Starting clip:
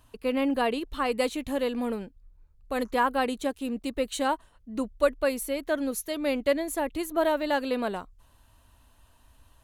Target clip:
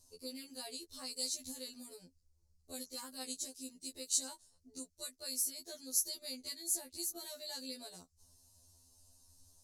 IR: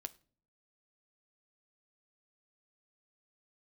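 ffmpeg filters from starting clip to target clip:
-filter_complex "[0:a]acrossover=split=890[a][b];[a]acompressor=threshold=-41dB:ratio=6[c];[b]bandpass=f=4.8k:t=q:w=2.1:csg=0[d];[c][d]amix=inputs=2:normalize=0,aexciter=amount=10.4:drive=7.1:freq=4.8k,afftfilt=real='re*2*eq(mod(b,4),0)':imag='im*2*eq(mod(b,4),0)':win_size=2048:overlap=0.75,volume=-7dB"

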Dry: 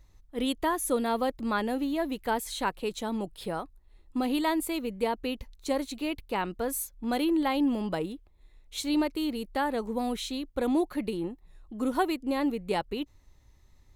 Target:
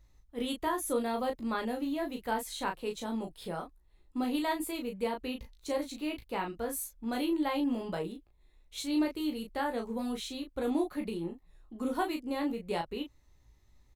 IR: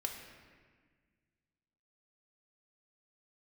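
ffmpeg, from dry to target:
-af "aecho=1:1:17|36:0.501|0.531,volume=-6dB"

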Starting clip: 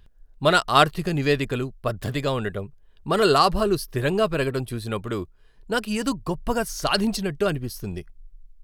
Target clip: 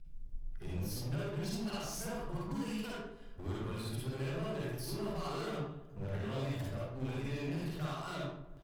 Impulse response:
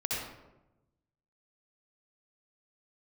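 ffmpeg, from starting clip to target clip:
-filter_complex "[0:a]areverse,acompressor=threshold=-35dB:ratio=5,alimiter=level_in=8dB:limit=-24dB:level=0:latency=1:release=26,volume=-8dB,acontrast=63,aeval=exprs='sgn(val(0))*max(abs(val(0))-0.00119,0)':c=same,flanger=delay=5.8:depth=4.9:regen=65:speed=0.74:shape=triangular,asoftclip=type=hard:threshold=-38.5dB,asplit=2[a][b];[b]adelay=155,lowpass=f=1.5k:p=1,volume=-13.5dB,asplit=2[c][d];[d]adelay=155,lowpass=f=1.5k:p=1,volume=0.54,asplit=2[e][f];[f]adelay=155,lowpass=f=1.5k:p=1,volume=0.54,asplit=2[g][h];[h]adelay=155,lowpass=f=1.5k:p=1,volume=0.54,asplit=2[i][j];[j]adelay=155,lowpass=f=1.5k:p=1,volume=0.54[k];[a][c][e][g][i][k]amix=inputs=6:normalize=0[l];[1:a]atrim=start_sample=2205,afade=t=out:st=0.34:d=0.01,atrim=end_sample=15435,asetrate=57330,aresample=44100[m];[l][m]afir=irnorm=-1:irlink=0,volume=-1.5dB"

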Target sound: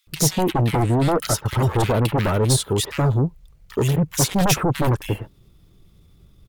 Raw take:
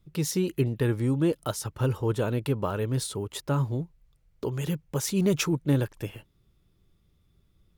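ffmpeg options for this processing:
-filter_complex "[0:a]atempo=1.2,aeval=exprs='0.251*sin(PI/2*3.98*val(0)/0.251)':c=same,acrossover=split=1700[a][b];[a]adelay=70[c];[c][b]amix=inputs=2:normalize=0,volume=-2.5dB"

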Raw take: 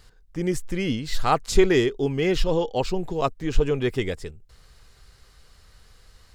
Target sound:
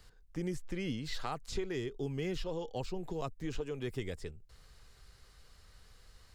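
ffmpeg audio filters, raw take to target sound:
-filter_complex "[0:a]acrossover=split=190|5900[a][b][c];[a]acompressor=threshold=-33dB:ratio=4[d];[b]acompressor=threshold=-32dB:ratio=4[e];[c]acompressor=threshold=-53dB:ratio=4[f];[d][e][f]amix=inputs=3:normalize=0,volume=-6dB"

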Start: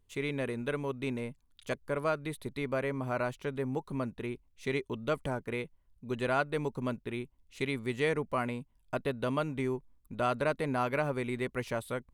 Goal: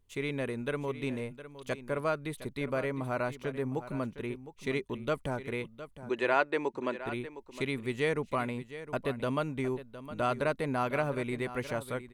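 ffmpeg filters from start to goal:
-filter_complex "[0:a]asettb=1/sr,asplit=3[a][b][c];[a]atrim=end=6.094[d];[b]atrim=start=6.09:end=6.99,asetpts=PTS-STARTPTS,afade=t=in:d=0.004:c=qsin,afade=t=out:st=0.896:d=0.004:c=qsin,highpass=310,equalizer=f=340:t=q:w=4:g=9,equalizer=f=570:t=q:w=4:g=3,equalizer=f=930:t=q:w=4:g=6,equalizer=f=1.8k:t=q:w=4:g=7,equalizer=f=2.5k:t=q:w=4:g=5,lowpass=f=7.9k:w=0.5412,lowpass=f=7.9k:w=1.3066[e];[c]atrim=start=6.986[f];[d][e]acrossfade=d=0.004:c1=hsin:c2=qsin[g];[g][f]acrossfade=d=0.004:c1=qsin:c2=hsin,asplit=2[h][i];[i]aecho=0:1:711:0.211[j];[h][j]amix=inputs=2:normalize=0"

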